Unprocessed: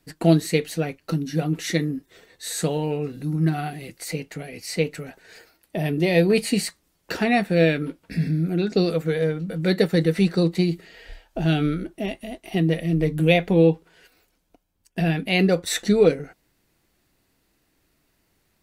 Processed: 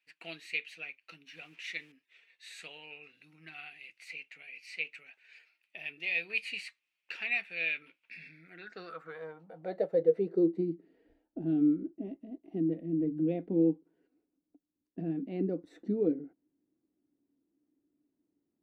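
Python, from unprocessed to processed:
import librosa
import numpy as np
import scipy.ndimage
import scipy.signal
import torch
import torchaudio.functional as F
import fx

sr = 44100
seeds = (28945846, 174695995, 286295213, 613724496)

y = fx.delta_hold(x, sr, step_db=-41.5, at=(1.27, 1.92))
y = fx.filter_sweep_bandpass(y, sr, from_hz=2500.0, to_hz=290.0, start_s=8.25, end_s=10.67, q=6.1)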